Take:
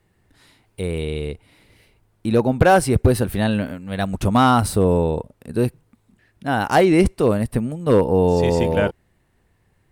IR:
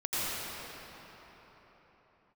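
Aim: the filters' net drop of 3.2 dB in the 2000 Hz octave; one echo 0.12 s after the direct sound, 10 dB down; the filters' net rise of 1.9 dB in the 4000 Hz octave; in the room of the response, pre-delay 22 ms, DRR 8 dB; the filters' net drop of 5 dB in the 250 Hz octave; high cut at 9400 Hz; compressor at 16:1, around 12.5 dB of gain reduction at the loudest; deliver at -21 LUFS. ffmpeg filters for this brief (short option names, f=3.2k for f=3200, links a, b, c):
-filter_complex "[0:a]lowpass=9.4k,equalizer=f=250:t=o:g=-7,equalizer=f=2k:t=o:g=-5.5,equalizer=f=4k:t=o:g=4.5,acompressor=threshold=-24dB:ratio=16,aecho=1:1:120:0.316,asplit=2[a][b];[1:a]atrim=start_sample=2205,adelay=22[c];[b][c]afir=irnorm=-1:irlink=0,volume=-17.5dB[d];[a][d]amix=inputs=2:normalize=0,volume=8.5dB"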